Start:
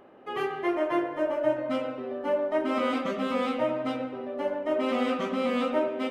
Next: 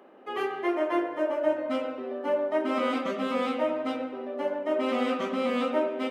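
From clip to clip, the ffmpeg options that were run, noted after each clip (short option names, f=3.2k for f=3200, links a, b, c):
-af "highpass=f=200:w=0.5412,highpass=f=200:w=1.3066"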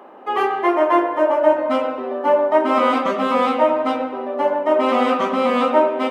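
-af "equalizer=f=940:t=o:w=0.96:g=10,volume=7dB"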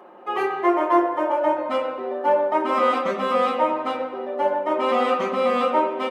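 -af "aecho=1:1:5.6:0.56,volume=-4.5dB"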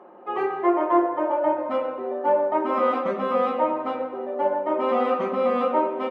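-af "lowpass=f=1.1k:p=1"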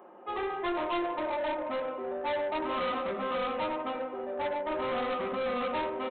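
-af "aresample=8000,asoftclip=type=tanh:threshold=-23.5dB,aresample=44100,crystalizer=i=3:c=0,volume=-5dB"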